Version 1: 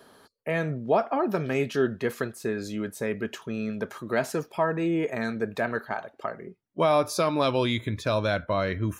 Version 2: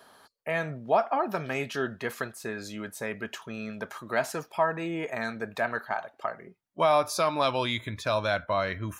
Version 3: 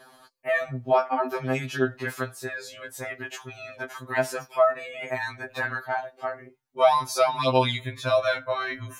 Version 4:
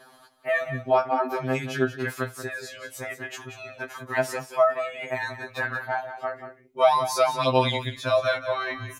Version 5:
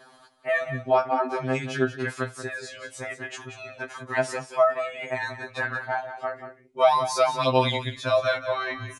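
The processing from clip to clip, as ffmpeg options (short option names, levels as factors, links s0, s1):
-af "lowshelf=f=560:t=q:w=1.5:g=-6"
-af "afftfilt=real='re*2.45*eq(mod(b,6),0)':imag='im*2.45*eq(mod(b,6),0)':win_size=2048:overlap=0.75,volume=1.68"
-af "aecho=1:1:183:0.282"
-af "aresample=22050,aresample=44100"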